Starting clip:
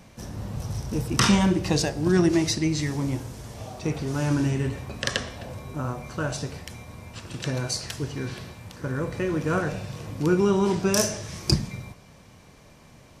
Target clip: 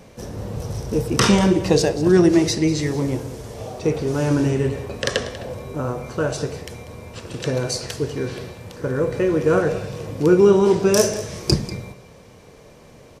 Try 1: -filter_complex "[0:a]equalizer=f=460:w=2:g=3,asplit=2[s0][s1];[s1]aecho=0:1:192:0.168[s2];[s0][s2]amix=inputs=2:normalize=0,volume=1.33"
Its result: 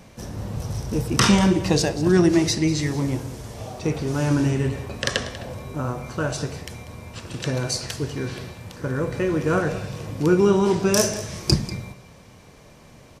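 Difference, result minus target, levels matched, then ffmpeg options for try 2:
500 Hz band -2.5 dB
-filter_complex "[0:a]equalizer=f=460:w=2:g=10.5,asplit=2[s0][s1];[s1]aecho=0:1:192:0.168[s2];[s0][s2]amix=inputs=2:normalize=0,volume=1.33"

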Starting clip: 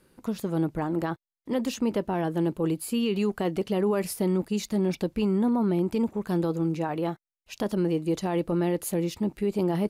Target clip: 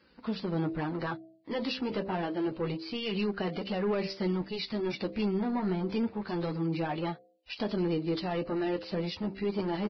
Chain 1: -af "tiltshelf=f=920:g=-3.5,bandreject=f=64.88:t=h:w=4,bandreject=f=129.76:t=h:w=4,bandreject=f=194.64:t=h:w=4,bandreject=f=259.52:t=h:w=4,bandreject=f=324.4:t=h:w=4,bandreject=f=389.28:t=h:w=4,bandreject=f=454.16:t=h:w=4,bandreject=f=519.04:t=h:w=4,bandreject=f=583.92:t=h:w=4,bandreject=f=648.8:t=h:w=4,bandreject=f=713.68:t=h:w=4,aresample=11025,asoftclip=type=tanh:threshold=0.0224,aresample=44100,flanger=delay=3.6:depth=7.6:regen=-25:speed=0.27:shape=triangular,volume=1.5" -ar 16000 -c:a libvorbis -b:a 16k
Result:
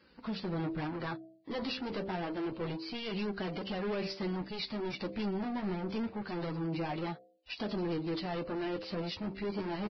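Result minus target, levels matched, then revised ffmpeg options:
saturation: distortion +7 dB
-af "tiltshelf=f=920:g=-3.5,bandreject=f=64.88:t=h:w=4,bandreject=f=129.76:t=h:w=4,bandreject=f=194.64:t=h:w=4,bandreject=f=259.52:t=h:w=4,bandreject=f=324.4:t=h:w=4,bandreject=f=389.28:t=h:w=4,bandreject=f=454.16:t=h:w=4,bandreject=f=519.04:t=h:w=4,bandreject=f=583.92:t=h:w=4,bandreject=f=648.8:t=h:w=4,bandreject=f=713.68:t=h:w=4,aresample=11025,asoftclip=type=tanh:threshold=0.0562,aresample=44100,flanger=delay=3.6:depth=7.6:regen=-25:speed=0.27:shape=triangular,volume=1.5" -ar 16000 -c:a libvorbis -b:a 16k

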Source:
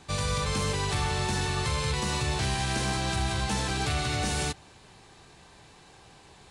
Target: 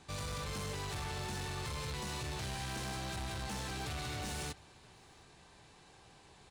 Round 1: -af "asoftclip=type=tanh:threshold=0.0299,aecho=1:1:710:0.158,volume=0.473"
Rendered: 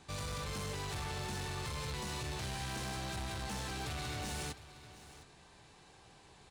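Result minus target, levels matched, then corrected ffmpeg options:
echo-to-direct +11 dB
-af "asoftclip=type=tanh:threshold=0.0299,aecho=1:1:710:0.0447,volume=0.473"

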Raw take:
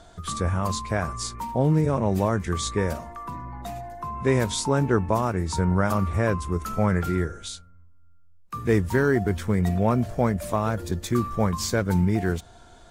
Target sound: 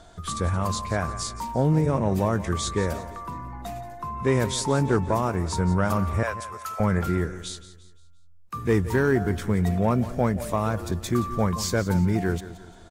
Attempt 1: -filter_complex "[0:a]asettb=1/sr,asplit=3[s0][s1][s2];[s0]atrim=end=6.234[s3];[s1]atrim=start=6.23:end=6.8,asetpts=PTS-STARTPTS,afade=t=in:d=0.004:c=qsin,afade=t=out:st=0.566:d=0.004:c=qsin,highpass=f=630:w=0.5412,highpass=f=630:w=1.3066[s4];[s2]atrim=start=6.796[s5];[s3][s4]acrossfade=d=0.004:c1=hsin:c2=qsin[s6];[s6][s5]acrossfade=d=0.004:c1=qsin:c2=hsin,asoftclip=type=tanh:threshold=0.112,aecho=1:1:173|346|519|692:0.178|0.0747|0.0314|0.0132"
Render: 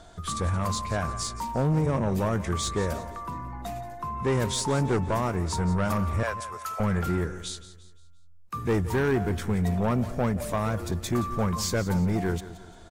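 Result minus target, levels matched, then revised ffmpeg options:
saturation: distortion +14 dB
-filter_complex "[0:a]asettb=1/sr,asplit=3[s0][s1][s2];[s0]atrim=end=6.234[s3];[s1]atrim=start=6.23:end=6.8,asetpts=PTS-STARTPTS,afade=t=in:d=0.004:c=qsin,afade=t=out:st=0.566:d=0.004:c=qsin,highpass=f=630:w=0.5412,highpass=f=630:w=1.3066[s4];[s2]atrim=start=6.796[s5];[s3][s4]acrossfade=d=0.004:c1=hsin:c2=qsin[s6];[s6][s5]acrossfade=d=0.004:c1=qsin:c2=hsin,asoftclip=type=tanh:threshold=0.376,aecho=1:1:173|346|519|692:0.178|0.0747|0.0314|0.0132"

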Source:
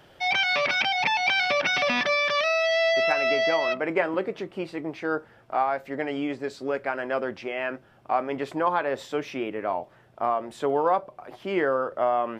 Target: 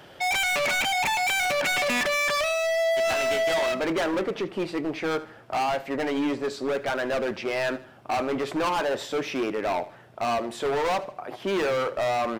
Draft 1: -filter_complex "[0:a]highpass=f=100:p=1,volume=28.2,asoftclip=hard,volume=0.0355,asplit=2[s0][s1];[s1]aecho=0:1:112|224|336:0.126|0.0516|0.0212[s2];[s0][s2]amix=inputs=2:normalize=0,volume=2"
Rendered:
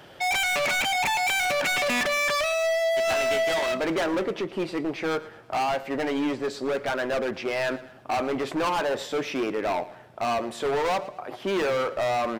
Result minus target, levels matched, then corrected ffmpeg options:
echo 36 ms late
-filter_complex "[0:a]highpass=f=100:p=1,volume=28.2,asoftclip=hard,volume=0.0355,asplit=2[s0][s1];[s1]aecho=0:1:76|152|228:0.126|0.0516|0.0212[s2];[s0][s2]amix=inputs=2:normalize=0,volume=2"

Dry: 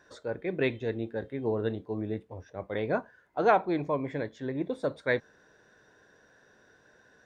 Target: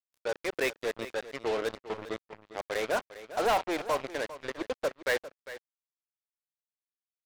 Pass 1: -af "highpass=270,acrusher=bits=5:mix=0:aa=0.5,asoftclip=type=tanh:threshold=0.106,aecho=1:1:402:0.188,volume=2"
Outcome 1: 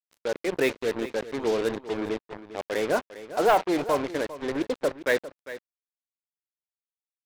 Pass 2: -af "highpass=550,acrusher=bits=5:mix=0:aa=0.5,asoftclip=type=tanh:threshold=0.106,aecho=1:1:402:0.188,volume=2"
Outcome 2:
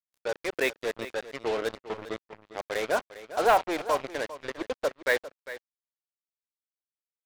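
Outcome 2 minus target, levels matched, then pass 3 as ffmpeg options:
saturation: distortion -8 dB
-af "highpass=550,acrusher=bits=5:mix=0:aa=0.5,asoftclip=type=tanh:threshold=0.0398,aecho=1:1:402:0.188,volume=2"

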